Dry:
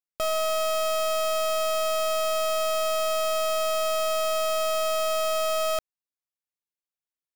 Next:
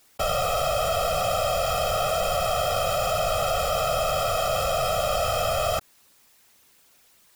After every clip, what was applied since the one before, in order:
random phases in short frames
envelope flattener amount 50%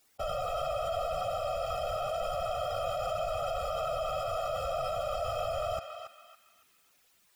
expanding power law on the bin magnitudes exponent 1.5
feedback echo with a band-pass in the loop 279 ms, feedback 40%, band-pass 2,200 Hz, level −4 dB
level −9 dB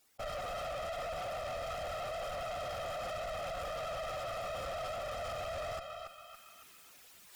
reversed playback
upward compression, threshold −44 dBFS
reversed playback
tube saturation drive 39 dB, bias 0.7
level +2 dB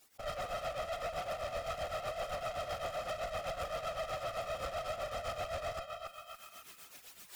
in parallel at 0 dB: brickwall limiter −44 dBFS, peak gain reduction 10.5 dB
on the sum: shaped tremolo triangle 7.8 Hz, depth 75%
level +1 dB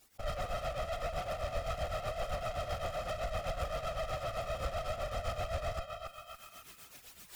low-shelf EQ 150 Hz +12 dB

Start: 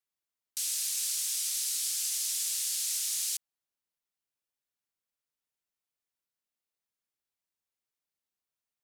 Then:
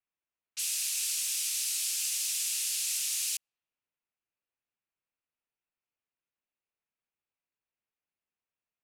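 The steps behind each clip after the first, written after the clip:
low-pass that shuts in the quiet parts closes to 2,100 Hz, open at −32 dBFS
parametric band 2,600 Hz +8 dB 0.4 octaves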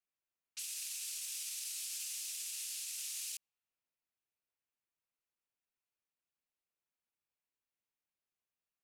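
brickwall limiter −29 dBFS, peak gain reduction 9.5 dB
level −4 dB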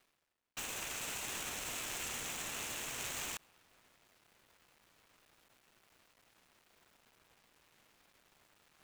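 running median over 9 samples
reversed playback
upward compression, threshold −58 dBFS
reversed playback
level +10.5 dB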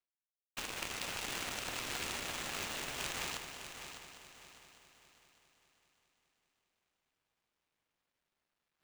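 running median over 5 samples
power curve on the samples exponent 2
echo machine with several playback heads 201 ms, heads first and third, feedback 54%, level −10 dB
level +10.5 dB

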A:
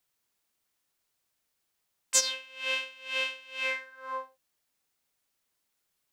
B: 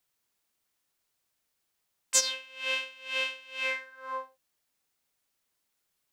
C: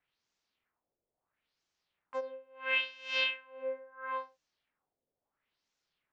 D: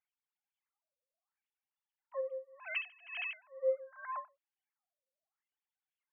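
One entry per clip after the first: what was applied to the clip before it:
no processing that can be heard
auto-filter low-pass sine 0.74 Hz 490–6,500 Hz; high-frequency loss of the air 110 metres; level −1.5 dB
three sine waves on the formant tracks; level −3 dB

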